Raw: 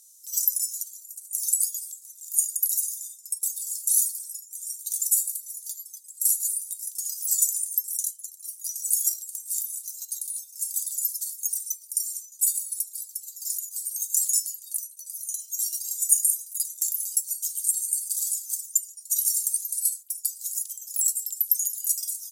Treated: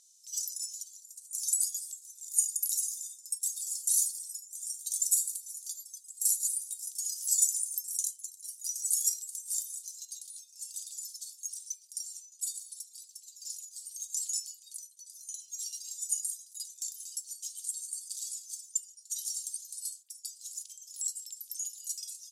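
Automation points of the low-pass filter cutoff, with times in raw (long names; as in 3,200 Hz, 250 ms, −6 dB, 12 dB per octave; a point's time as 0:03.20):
0:00.83 5,500 Hz
0:01.67 8,400 Hz
0:09.55 8,400 Hz
0:10.24 4,900 Hz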